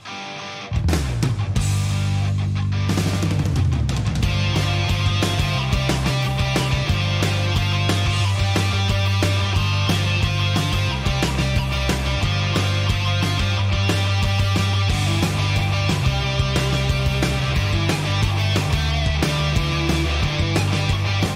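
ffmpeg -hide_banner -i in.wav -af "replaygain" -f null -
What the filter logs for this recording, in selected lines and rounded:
track_gain = +4.2 dB
track_peak = 0.338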